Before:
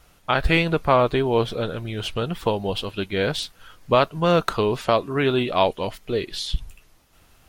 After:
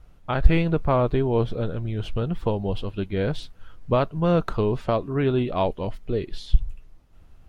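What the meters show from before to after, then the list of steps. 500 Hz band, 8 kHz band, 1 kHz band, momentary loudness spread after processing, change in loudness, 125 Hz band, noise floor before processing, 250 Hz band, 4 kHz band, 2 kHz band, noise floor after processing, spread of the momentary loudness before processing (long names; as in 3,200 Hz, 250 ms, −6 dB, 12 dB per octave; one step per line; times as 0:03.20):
−3.0 dB, below −10 dB, −6.0 dB, 8 LU, −2.5 dB, +3.0 dB, −57 dBFS, 0.0 dB, −11.5 dB, −9.0 dB, −51 dBFS, 10 LU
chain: spectral tilt −3 dB per octave
level −6 dB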